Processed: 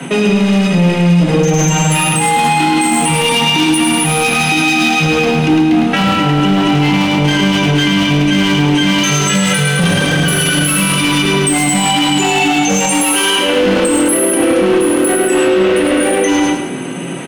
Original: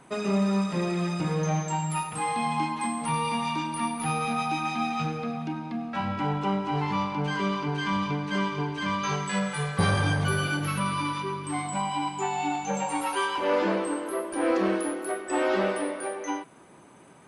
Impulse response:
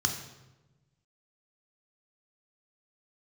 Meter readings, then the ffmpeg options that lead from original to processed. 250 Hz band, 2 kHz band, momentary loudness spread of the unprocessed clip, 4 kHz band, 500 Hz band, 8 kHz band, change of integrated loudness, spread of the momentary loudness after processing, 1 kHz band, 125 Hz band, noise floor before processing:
+17.5 dB, +17.5 dB, 6 LU, +22.0 dB, +15.5 dB, +22.5 dB, +16.5 dB, 1 LU, +11.5 dB, +15.0 dB, -52 dBFS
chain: -filter_complex "[1:a]atrim=start_sample=2205,atrim=end_sample=3528,asetrate=83790,aresample=44100[a];[0:a][a]afir=irnorm=-1:irlink=0,areverse,acompressor=threshold=-27dB:ratio=16,areverse,asoftclip=type=hard:threshold=-28.5dB,equalizer=f=3k:w=1.5:g=5,bandreject=f=2.4k:w=28,acrossover=split=200|4900[b][c][d];[d]dynaudnorm=f=270:g=21:m=7dB[e];[b][c][e]amix=inputs=3:normalize=0,bandreject=f=60:t=h:w=6,bandreject=f=120:t=h:w=6,bandreject=f=180:t=h:w=6,bandreject=f=240:t=h:w=6,aecho=1:1:105|210|315|420|525:0.596|0.238|0.0953|0.0381|0.0152,alimiter=level_in=27dB:limit=-1dB:release=50:level=0:latency=1,volume=-3dB"

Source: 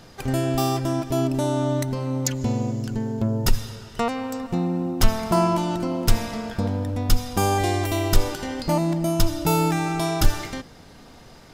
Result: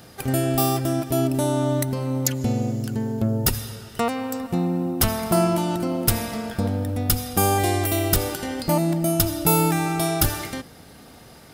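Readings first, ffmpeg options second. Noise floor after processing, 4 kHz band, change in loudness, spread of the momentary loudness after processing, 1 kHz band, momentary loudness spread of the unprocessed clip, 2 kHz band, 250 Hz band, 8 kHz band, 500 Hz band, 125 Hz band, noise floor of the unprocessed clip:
-46 dBFS, +1.0 dB, +1.5 dB, 7 LU, 0.0 dB, 6 LU, +1.0 dB, +1.0 dB, +5.0 dB, +1.0 dB, +0.5 dB, -47 dBFS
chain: -af "aexciter=amount=3.7:drive=3.4:freq=8.9k,highpass=54,bandreject=f=990:w=13,volume=1dB"

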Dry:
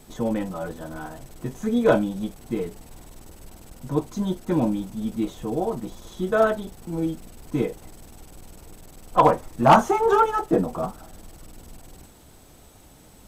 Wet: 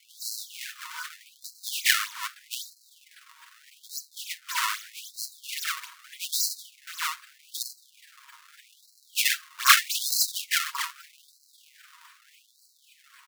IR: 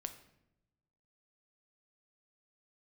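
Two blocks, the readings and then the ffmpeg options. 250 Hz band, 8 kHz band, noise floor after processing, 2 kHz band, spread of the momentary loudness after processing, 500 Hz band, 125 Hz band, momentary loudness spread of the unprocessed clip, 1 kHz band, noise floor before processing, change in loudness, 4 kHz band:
under -40 dB, +14.5 dB, -62 dBFS, +5.5 dB, 16 LU, under -40 dB, under -40 dB, 17 LU, -11.0 dB, -50 dBFS, -3.5 dB, +14.0 dB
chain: -af "acrusher=samples=32:mix=1:aa=0.000001:lfo=1:lforange=51.2:lforate=3.7,aecho=1:1:7.3:0.52,afftfilt=real='re*gte(b*sr/1024,890*pow(4000/890,0.5+0.5*sin(2*PI*0.81*pts/sr)))':imag='im*gte(b*sr/1024,890*pow(4000/890,0.5+0.5*sin(2*PI*0.81*pts/sr)))':win_size=1024:overlap=0.75,volume=3dB"

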